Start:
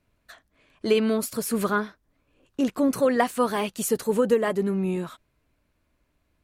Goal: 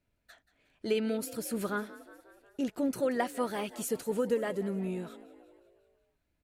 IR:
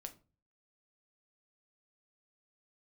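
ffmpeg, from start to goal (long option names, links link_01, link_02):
-filter_complex "[0:a]bandreject=frequency=1100:width=5.3,asplit=2[link_01][link_02];[link_02]asplit=6[link_03][link_04][link_05][link_06][link_07][link_08];[link_03]adelay=181,afreqshift=42,volume=-17dB[link_09];[link_04]adelay=362,afreqshift=84,volume=-21.6dB[link_10];[link_05]adelay=543,afreqshift=126,volume=-26.2dB[link_11];[link_06]adelay=724,afreqshift=168,volume=-30.7dB[link_12];[link_07]adelay=905,afreqshift=210,volume=-35.3dB[link_13];[link_08]adelay=1086,afreqshift=252,volume=-39.9dB[link_14];[link_09][link_10][link_11][link_12][link_13][link_14]amix=inputs=6:normalize=0[link_15];[link_01][link_15]amix=inputs=2:normalize=0,volume=-8.5dB"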